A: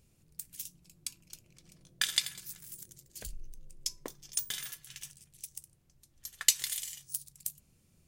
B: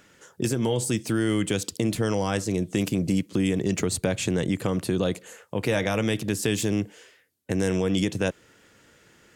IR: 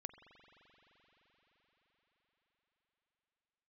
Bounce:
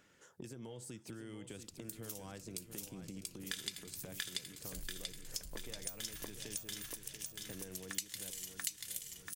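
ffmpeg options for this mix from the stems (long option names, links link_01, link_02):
-filter_complex "[0:a]adelay=1500,volume=2.5dB,asplit=2[link_01][link_02];[link_02]volume=-3dB[link_03];[1:a]acompressor=threshold=-34dB:ratio=5,volume=-11.5dB,asplit=3[link_04][link_05][link_06];[link_05]volume=-9.5dB[link_07];[link_06]apad=whole_len=422107[link_08];[link_01][link_08]sidechaincompress=threshold=-46dB:ratio=8:attack=16:release=390[link_09];[link_03][link_07]amix=inputs=2:normalize=0,aecho=0:1:686|1372|2058|2744|3430|4116:1|0.46|0.212|0.0973|0.0448|0.0206[link_10];[link_09][link_04][link_10]amix=inputs=3:normalize=0,acompressor=threshold=-43dB:ratio=2.5"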